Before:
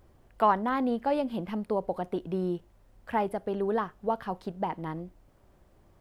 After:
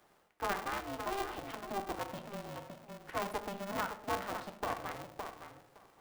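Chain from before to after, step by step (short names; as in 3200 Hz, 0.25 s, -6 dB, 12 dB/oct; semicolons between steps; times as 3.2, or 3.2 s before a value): darkening echo 0.564 s, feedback 15%, low-pass 2000 Hz, level -12 dB; reverse; compressor 6:1, threshold -34 dBFS, peak gain reduction 15.5 dB; reverse; HPF 470 Hz 24 dB/oct; notch 760 Hz, Q 17; on a send at -5.5 dB: reverb RT60 0.50 s, pre-delay 5 ms; on the sum: polarity switched at an audio rate 200 Hz; gain +1.5 dB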